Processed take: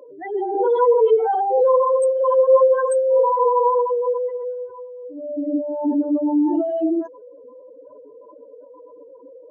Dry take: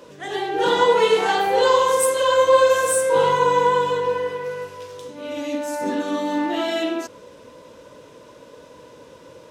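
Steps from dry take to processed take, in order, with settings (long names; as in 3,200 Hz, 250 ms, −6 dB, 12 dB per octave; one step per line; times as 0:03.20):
expanding power law on the bin magnitudes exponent 3.8
low shelf with overshoot 230 Hz −7.5 dB, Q 3
mains-hum notches 50/100/150 Hz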